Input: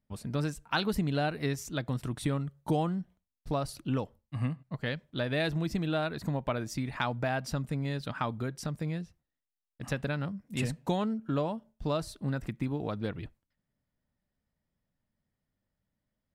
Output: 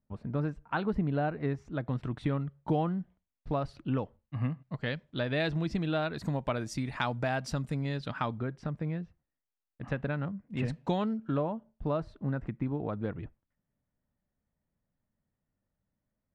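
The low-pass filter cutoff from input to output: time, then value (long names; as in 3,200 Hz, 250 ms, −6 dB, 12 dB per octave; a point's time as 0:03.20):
1,500 Hz
from 0:01.87 2,600 Hz
from 0:04.62 4,800 Hz
from 0:06.14 9,200 Hz
from 0:07.81 5,300 Hz
from 0:08.39 2,100 Hz
from 0:10.68 4,200 Hz
from 0:11.37 1,700 Hz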